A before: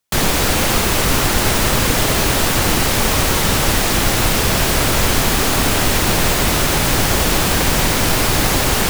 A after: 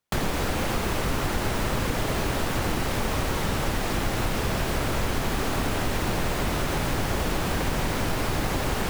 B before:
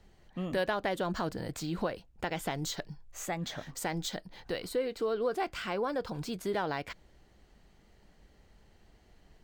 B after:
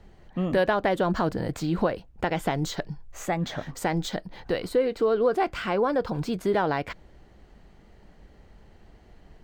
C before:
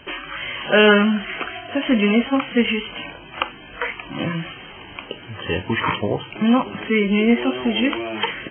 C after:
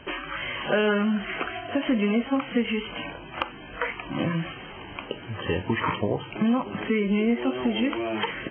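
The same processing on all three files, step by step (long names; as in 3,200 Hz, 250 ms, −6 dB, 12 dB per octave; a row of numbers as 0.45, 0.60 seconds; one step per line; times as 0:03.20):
downward compressor 3 to 1, threshold −22 dBFS
high-shelf EQ 2,900 Hz −10 dB
loudness normalisation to −27 LKFS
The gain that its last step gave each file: −1.0, +9.0, +0.5 decibels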